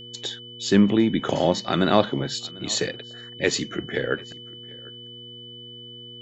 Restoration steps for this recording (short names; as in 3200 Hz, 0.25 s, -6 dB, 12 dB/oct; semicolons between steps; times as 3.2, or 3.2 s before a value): de-hum 119.5 Hz, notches 4; notch 3000 Hz, Q 30; inverse comb 0.745 s -23.5 dB